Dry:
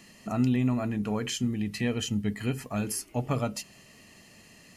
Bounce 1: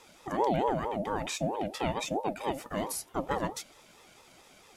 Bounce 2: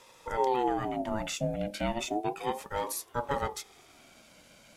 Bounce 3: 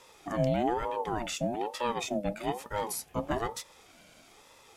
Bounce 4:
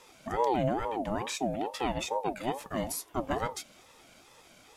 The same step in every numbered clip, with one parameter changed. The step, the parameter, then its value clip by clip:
ring modulator with a swept carrier, at: 4.5, 0.33, 1.1, 2.3 Hz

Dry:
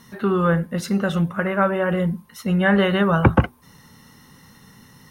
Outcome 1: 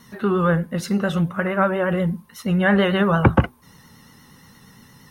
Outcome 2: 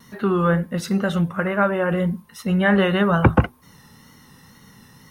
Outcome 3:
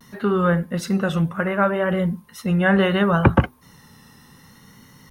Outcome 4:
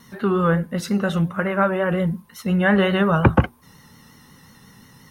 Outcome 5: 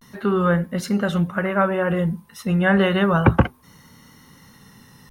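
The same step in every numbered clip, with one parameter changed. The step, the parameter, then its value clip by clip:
vibrato, rate: 8.6, 2, 0.67, 5.6, 0.32 Hz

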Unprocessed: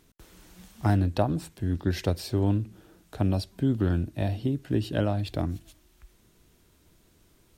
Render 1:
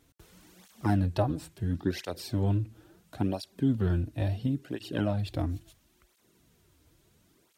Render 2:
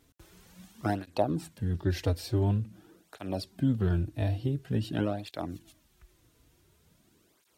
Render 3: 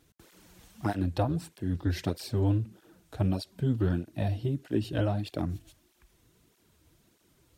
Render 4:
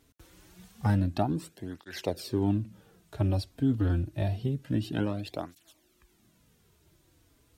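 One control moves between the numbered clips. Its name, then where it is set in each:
tape flanging out of phase, nulls at: 0.73, 0.47, 1.6, 0.27 Hz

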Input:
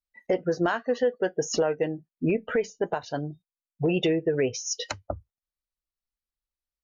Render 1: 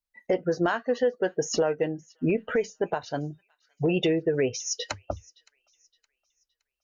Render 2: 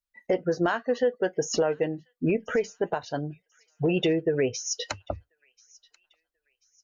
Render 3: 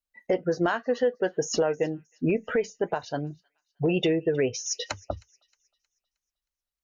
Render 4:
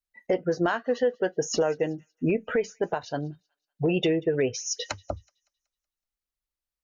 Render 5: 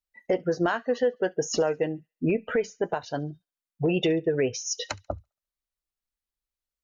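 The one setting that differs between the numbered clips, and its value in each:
thin delay, time: 567, 1037, 313, 187, 69 ms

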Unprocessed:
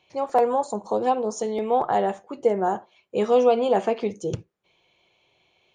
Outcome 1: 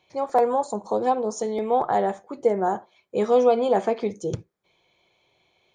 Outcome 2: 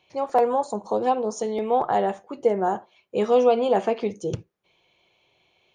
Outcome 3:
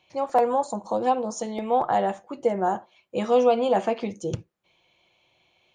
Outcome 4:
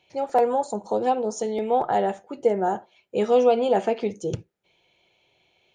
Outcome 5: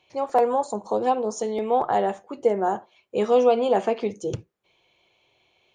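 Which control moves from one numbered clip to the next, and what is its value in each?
notch, frequency: 2800, 7700, 420, 1100, 170 Hz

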